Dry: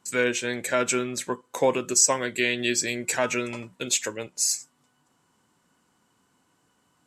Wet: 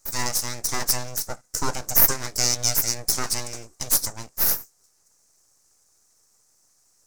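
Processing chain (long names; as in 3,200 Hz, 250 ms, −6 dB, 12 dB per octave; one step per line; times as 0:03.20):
full-wave rectification
high shelf with overshoot 4,300 Hz +11 dB, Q 3
level −1.5 dB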